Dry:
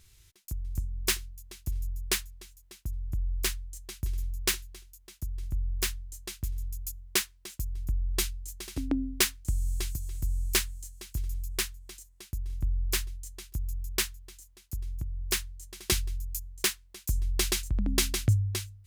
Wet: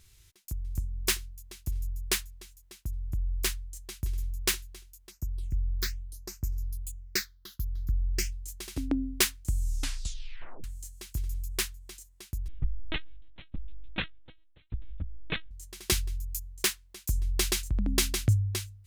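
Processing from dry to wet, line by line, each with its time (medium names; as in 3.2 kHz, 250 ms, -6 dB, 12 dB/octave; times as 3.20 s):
5.10–8.31 s: phase shifter stages 6, 1.2 Hz -> 0.21 Hz, lowest notch 630–3400 Hz
9.59 s: tape stop 1.05 s
12.48–15.51 s: LPC vocoder at 8 kHz pitch kept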